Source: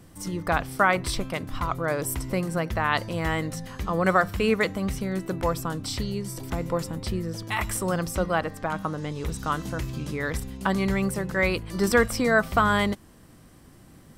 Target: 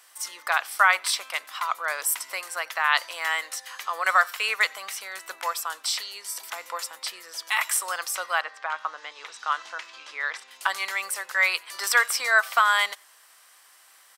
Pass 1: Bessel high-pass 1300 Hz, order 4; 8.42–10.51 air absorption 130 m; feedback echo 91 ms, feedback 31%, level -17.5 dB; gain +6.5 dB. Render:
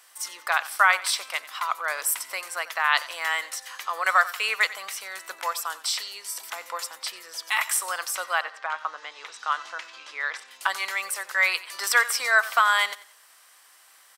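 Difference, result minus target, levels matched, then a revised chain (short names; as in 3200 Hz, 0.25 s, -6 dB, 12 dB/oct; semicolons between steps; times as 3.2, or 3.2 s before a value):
echo-to-direct +11.5 dB
Bessel high-pass 1300 Hz, order 4; 8.42–10.51 air absorption 130 m; feedback echo 91 ms, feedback 31%, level -29 dB; gain +6.5 dB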